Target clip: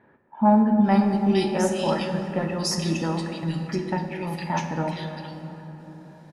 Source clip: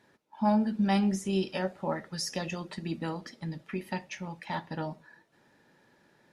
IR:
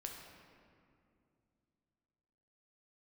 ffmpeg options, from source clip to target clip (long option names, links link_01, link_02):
-filter_complex "[0:a]acrossover=split=2200[link_01][link_02];[link_02]adelay=460[link_03];[link_01][link_03]amix=inputs=2:normalize=0,asplit=2[link_04][link_05];[1:a]atrim=start_sample=2205,asetrate=23373,aresample=44100[link_06];[link_05][link_06]afir=irnorm=-1:irlink=0,volume=4dB[link_07];[link_04][link_07]amix=inputs=2:normalize=0"